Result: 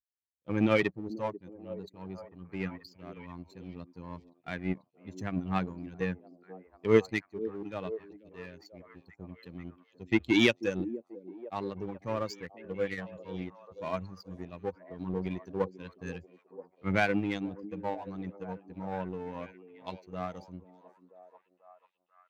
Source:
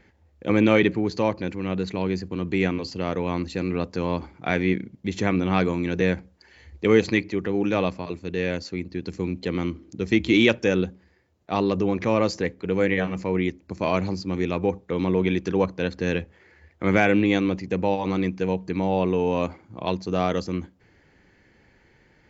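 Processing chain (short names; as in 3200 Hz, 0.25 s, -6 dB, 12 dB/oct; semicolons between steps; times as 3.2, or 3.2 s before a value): per-bin expansion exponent 2; power-law curve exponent 1.4; delay with a stepping band-pass 0.489 s, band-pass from 320 Hz, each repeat 0.7 oct, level -11 dB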